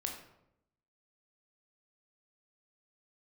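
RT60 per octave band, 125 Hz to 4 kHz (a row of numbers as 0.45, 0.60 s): 1.0, 1.0, 0.85, 0.75, 0.60, 0.50 s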